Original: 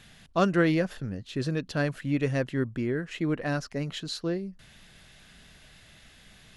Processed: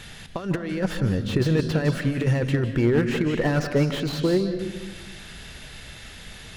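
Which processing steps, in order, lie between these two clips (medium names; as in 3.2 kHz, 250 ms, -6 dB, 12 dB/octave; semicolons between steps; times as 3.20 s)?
compressor with a negative ratio -29 dBFS, ratio -0.5; reverberation RT60 1.1 s, pre-delay 150 ms, DRR 9.5 dB; slew-rate limiter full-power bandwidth 32 Hz; trim +8.5 dB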